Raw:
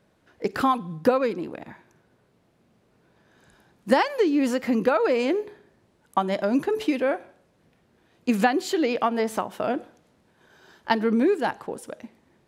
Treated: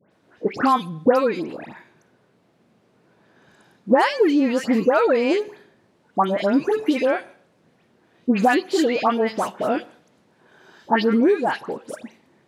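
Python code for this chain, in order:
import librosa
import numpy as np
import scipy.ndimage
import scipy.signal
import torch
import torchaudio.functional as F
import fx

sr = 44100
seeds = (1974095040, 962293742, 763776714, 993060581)

y = scipy.signal.sosfilt(scipy.signal.butter(2, 130.0, 'highpass', fs=sr, output='sos'), x)
y = fx.high_shelf(y, sr, hz=11000.0, db=-10.0)
y = fx.dispersion(y, sr, late='highs', ms=114.0, hz=1900.0)
y = y * 10.0 ** (4.0 / 20.0)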